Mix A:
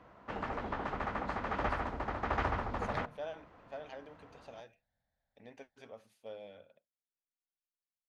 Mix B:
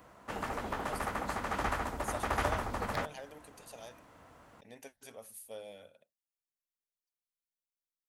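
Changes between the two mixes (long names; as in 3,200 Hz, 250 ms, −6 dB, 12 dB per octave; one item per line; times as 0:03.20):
speech: entry −0.75 s
master: remove high-frequency loss of the air 210 metres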